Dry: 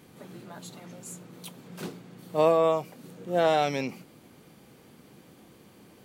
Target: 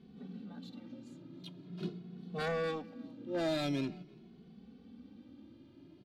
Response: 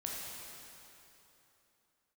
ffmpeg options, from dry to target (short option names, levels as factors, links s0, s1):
-filter_complex "[0:a]equalizer=f=125:t=o:w=1:g=-8,equalizer=f=250:t=o:w=1:g=6,equalizer=f=500:t=o:w=1:g=-10,equalizer=f=1000:t=o:w=1:g=-11,equalizer=f=2000:t=o:w=1:g=-10,equalizer=f=4000:t=o:w=1:g=7,equalizer=f=8000:t=o:w=1:g=-9,aeval=exprs='0.0473*(abs(mod(val(0)/0.0473+3,4)-2)-1)':c=same,aecho=1:1:336:0.0708,adynamicsmooth=sensitivity=5.5:basefreq=2200,asplit=2[s0][s1];[s1]adelay=2.3,afreqshift=0.45[s2];[s0][s2]amix=inputs=2:normalize=1,volume=1.5"